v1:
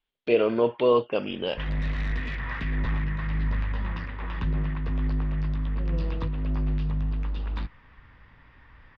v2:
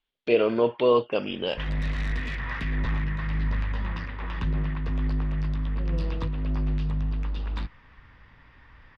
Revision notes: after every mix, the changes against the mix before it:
master: remove high-frequency loss of the air 93 metres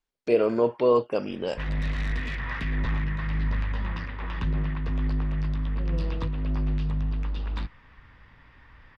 first voice: remove low-pass with resonance 3,300 Hz, resonance Q 3.6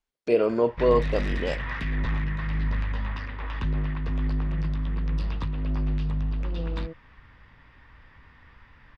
second voice: entry +0.65 s
background: entry −0.80 s

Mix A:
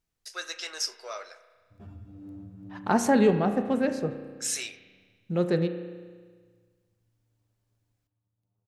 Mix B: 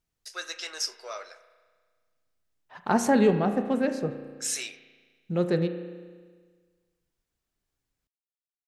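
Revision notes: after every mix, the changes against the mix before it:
background: muted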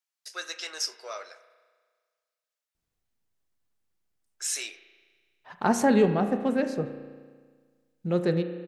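second voice: entry +2.75 s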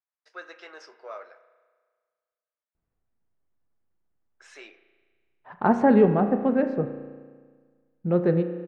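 second voice +3.5 dB
master: add low-pass filter 1,500 Hz 12 dB per octave

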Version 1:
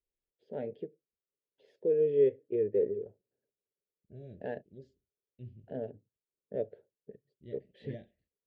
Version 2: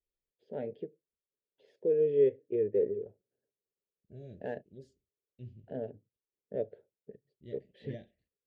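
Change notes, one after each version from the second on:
second voice: remove high-frequency loss of the air 140 metres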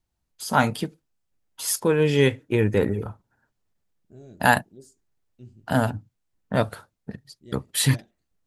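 first voice: remove resonant band-pass 410 Hz, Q 5
master: remove drawn EQ curve 150 Hz 0 dB, 310 Hz −7 dB, 570 Hz +2 dB, 1,200 Hz −30 dB, 1,700 Hz −2 dB, 3,400 Hz −1 dB, 8,500 Hz −27 dB

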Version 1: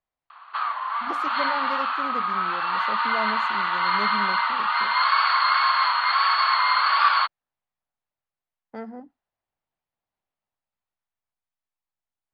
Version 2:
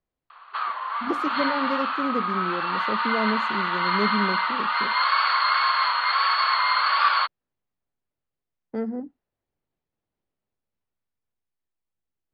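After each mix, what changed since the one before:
master: add low shelf with overshoot 560 Hz +8 dB, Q 1.5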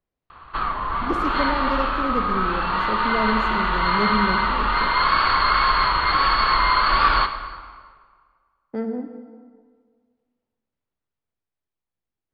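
background: remove Bessel high-pass filter 910 Hz, order 8
reverb: on, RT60 1.7 s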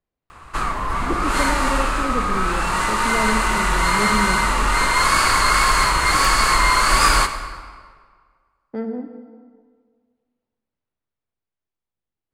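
background: remove Chebyshev low-pass with heavy ripple 4,500 Hz, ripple 6 dB

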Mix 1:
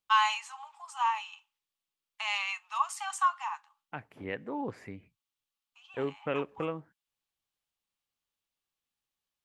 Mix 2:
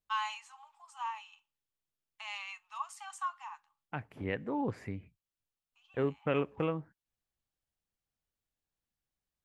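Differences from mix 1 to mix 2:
first voice −10.0 dB
master: add low-shelf EQ 150 Hz +11 dB

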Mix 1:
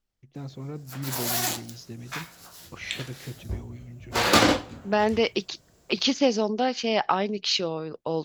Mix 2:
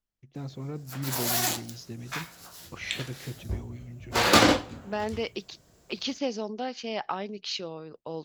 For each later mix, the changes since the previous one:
second voice −8.5 dB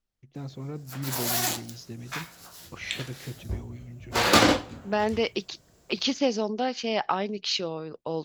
second voice +5.5 dB

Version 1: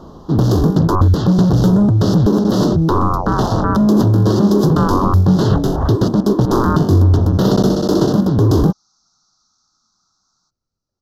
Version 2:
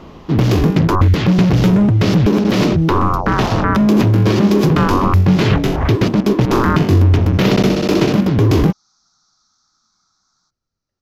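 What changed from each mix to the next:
master: remove Butterworth band-reject 2,300 Hz, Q 0.92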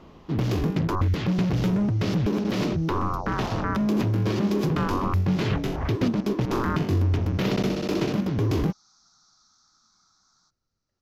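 first sound −11.5 dB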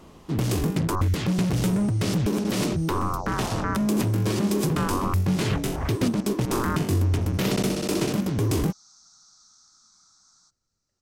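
master: remove moving average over 5 samples

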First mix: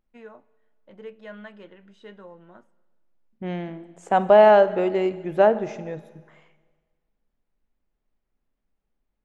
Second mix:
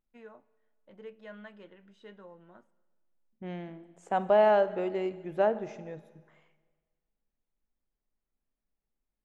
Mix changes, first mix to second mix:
first voice −6.0 dB
second voice −9.0 dB

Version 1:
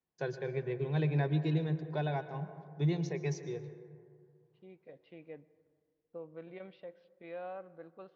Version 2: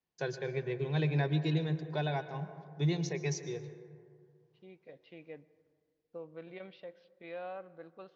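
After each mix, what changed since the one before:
master: add high-shelf EQ 2,800 Hz +10 dB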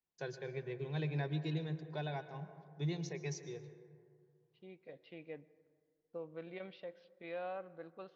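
first voice −7.0 dB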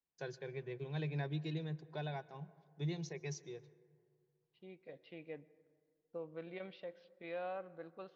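first voice: send −10.0 dB

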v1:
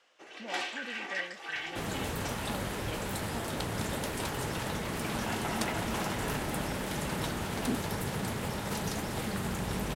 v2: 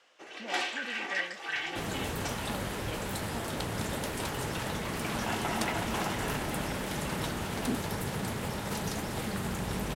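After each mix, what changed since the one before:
first sound +3.0 dB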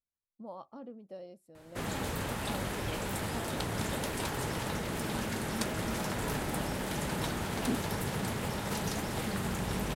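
first sound: muted

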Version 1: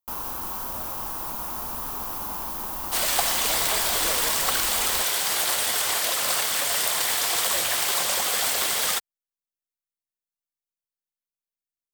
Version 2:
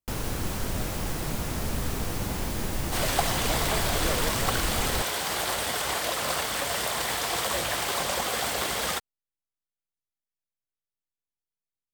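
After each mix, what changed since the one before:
first sound: add octave-band graphic EQ 125/500/1,000/2,000/4,000/8,000 Hz +12/+7/−11/+12/+7/+10 dB
master: add spectral tilt −2.5 dB per octave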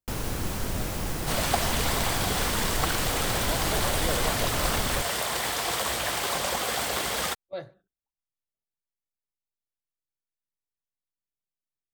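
second sound: entry −1.65 s

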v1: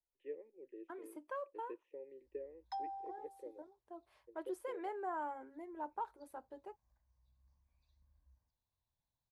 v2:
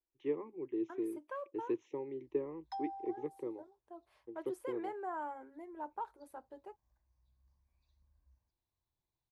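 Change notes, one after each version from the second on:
first voice: remove formant filter e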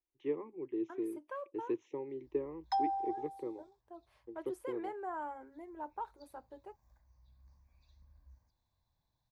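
background +10.0 dB

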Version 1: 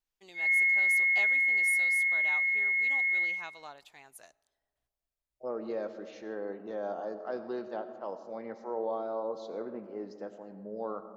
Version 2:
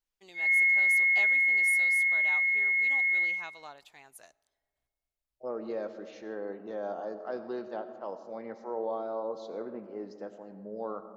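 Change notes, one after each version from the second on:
background: send on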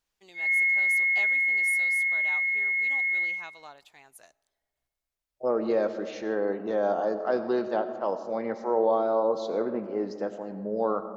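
second voice +10.0 dB

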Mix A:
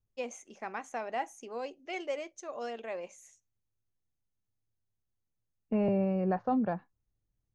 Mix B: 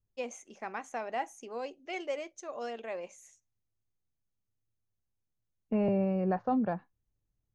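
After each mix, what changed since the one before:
nothing changed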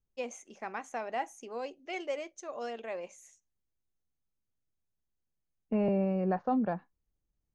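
second voice: add parametric band 110 Hz −13.5 dB 0.25 octaves

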